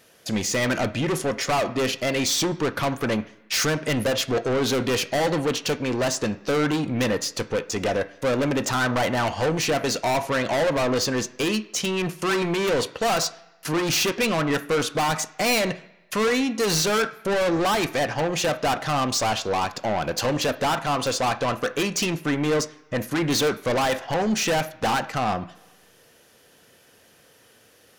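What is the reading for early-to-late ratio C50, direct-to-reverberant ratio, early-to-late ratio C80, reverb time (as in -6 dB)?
17.0 dB, 9.5 dB, 19.0 dB, 1.0 s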